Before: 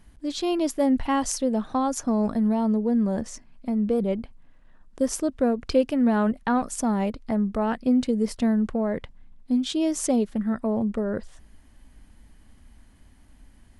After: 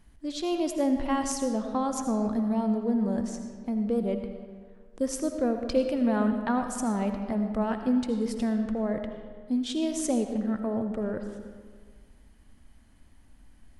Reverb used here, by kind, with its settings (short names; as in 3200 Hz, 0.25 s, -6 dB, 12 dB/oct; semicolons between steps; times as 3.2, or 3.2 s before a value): digital reverb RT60 1.7 s, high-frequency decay 0.65×, pre-delay 40 ms, DRR 6 dB; gain -4.5 dB